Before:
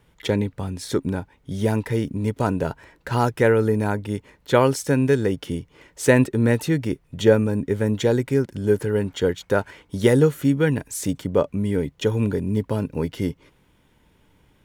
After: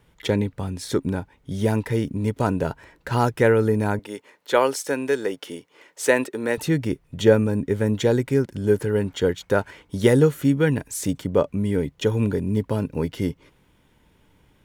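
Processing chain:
0:03.99–0:06.58: high-pass filter 400 Hz 12 dB per octave

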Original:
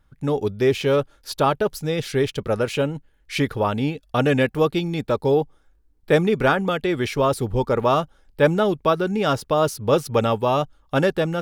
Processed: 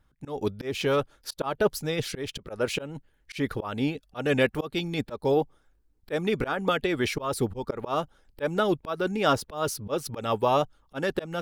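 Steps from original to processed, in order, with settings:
harmonic and percussive parts rebalanced harmonic −7 dB
volume swells 200 ms

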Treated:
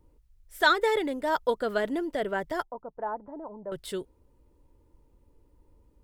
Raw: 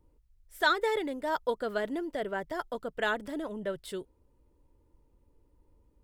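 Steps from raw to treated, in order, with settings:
0:02.63–0:03.72: transistor ladder low-pass 1,000 Hz, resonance 65%
level +4 dB

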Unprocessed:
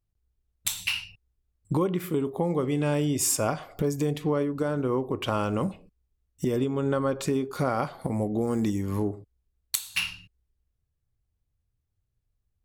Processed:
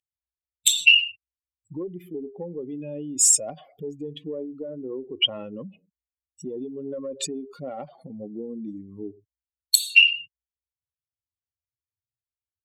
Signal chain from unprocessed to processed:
expanding power law on the bin magnitudes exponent 2.5
high-pass filter 230 Hz 12 dB per octave
harmonic generator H 3 −35 dB, 4 −35 dB, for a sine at −10 dBFS
high shelf with overshoot 2,000 Hz +13 dB, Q 3
hollow resonant body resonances 1,800 Hz, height 15 dB, ringing for 40 ms
level −4.5 dB

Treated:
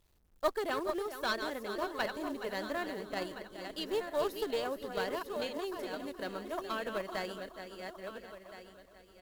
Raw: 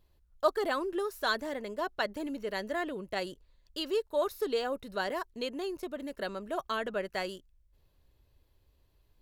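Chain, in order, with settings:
feedback delay that plays each chunk backwards 684 ms, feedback 47%, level −7 dB
on a send: repeating echo 421 ms, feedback 33%, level −11 dB
on the sum: log-companded quantiser 6 bits
harmonic generator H 4 −18 dB, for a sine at −13.5 dBFS
level −4 dB

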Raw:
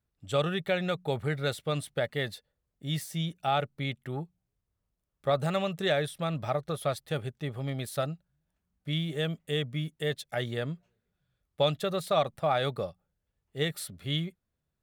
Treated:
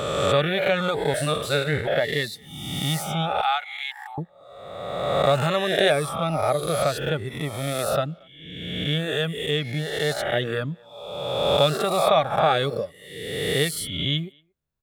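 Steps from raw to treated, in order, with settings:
peak hold with a rise ahead of every peak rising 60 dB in 1.75 s
0:01.14–0:01.87: reverse
0:03.41–0:04.18: elliptic high-pass filter 750 Hz, stop band 40 dB
reverb reduction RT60 1.1 s
far-end echo of a speakerphone 230 ms, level −28 dB
level +6 dB

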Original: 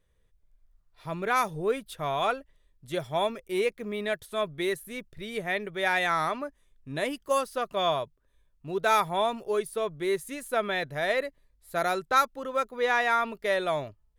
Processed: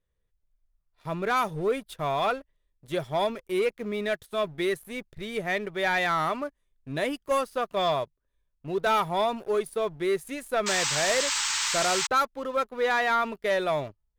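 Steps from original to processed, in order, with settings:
high-shelf EQ 3,800 Hz −3.5 dB
sound drawn into the spectrogram noise, 0:10.66–0:12.07, 820–8,400 Hz −30 dBFS
leveller curve on the samples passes 2
level −5 dB

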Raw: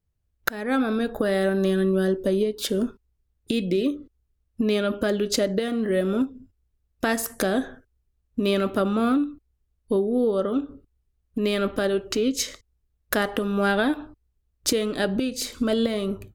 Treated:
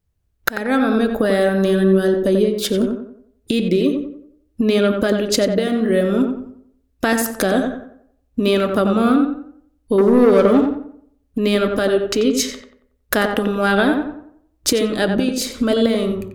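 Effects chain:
0:09.98–0:10.69: leveller curve on the samples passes 2
on a send: tape delay 90 ms, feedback 43%, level −4 dB, low-pass 1,700 Hz
on the sum: level +5.5 dB

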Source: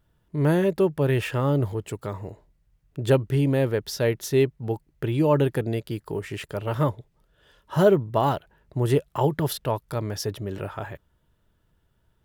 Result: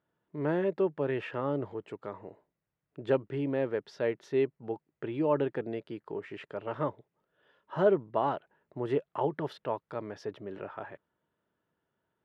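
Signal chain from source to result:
band-pass filter 240–2,300 Hz
level −6 dB

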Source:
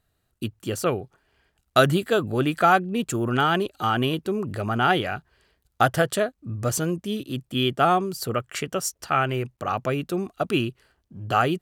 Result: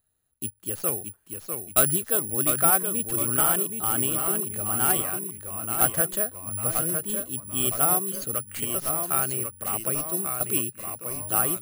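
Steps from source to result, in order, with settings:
stylus tracing distortion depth 0.085 ms
delay with pitch and tempo change per echo 598 ms, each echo −1 semitone, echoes 3, each echo −6 dB
bad sample-rate conversion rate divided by 4×, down filtered, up zero stuff
level −9 dB

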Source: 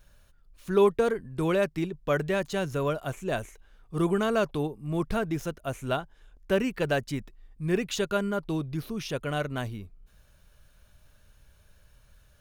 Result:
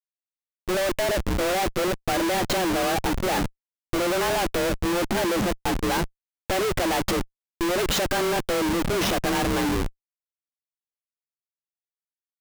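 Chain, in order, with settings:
frequency shifter +180 Hz
comparator with hysteresis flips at −37.5 dBFS
expander for the loud parts 1.5 to 1, over −42 dBFS
level +7.5 dB

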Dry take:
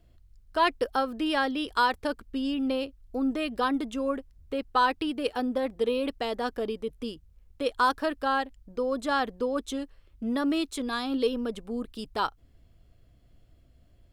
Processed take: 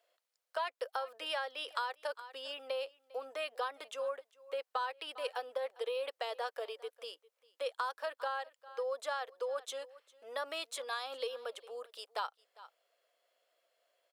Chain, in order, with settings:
elliptic high-pass filter 510 Hz, stop band 70 dB
single-tap delay 401 ms −23.5 dB
downward compressor 6 to 1, threshold −31 dBFS, peak gain reduction 12 dB
level −2.5 dB

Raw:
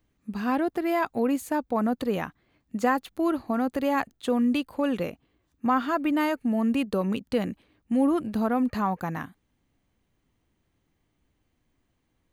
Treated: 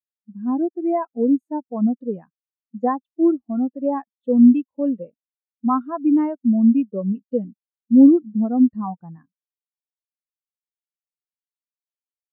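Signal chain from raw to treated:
every bin expanded away from the loudest bin 2.5 to 1
level +8.5 dB

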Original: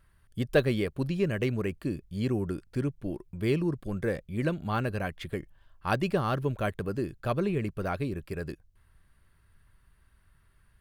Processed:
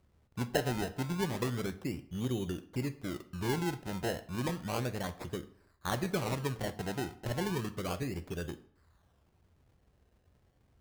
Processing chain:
high-pass filter 61 Hz
in parallel at +2.5 dB: downward compressor, threshold −35 dBFS, peak gain reduction 17 dB
on the sum: sample-and-hold swept by an LFO 26×, swing 100% 0.32 Hz
convolution reverb RT60 0.60 s, pre-delay 9 ms, DRR 10.5 dB
level −9 dB

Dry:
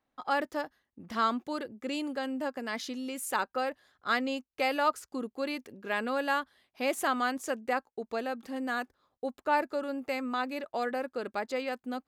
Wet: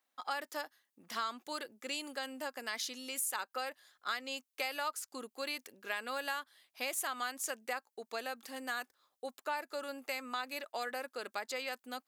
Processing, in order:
high-pass filter 1,100 Hz 6 dB per octave
high-shelf EQ 4,900 Hz +10.5 dB
downward compressor 4 to 1, threshold −34 dBFS, peak gain reduction 9.5 dB

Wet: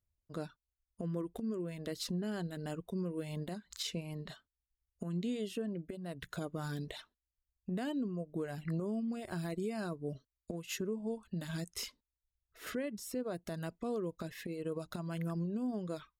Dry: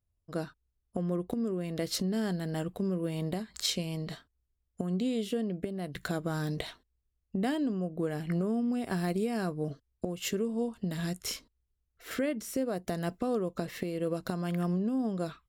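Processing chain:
change of speed 0.956×
reverb reduction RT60 0.82 s
brickwall limiter −24.5 dBFS, peak gain reduction 9 dB
level −4 dB

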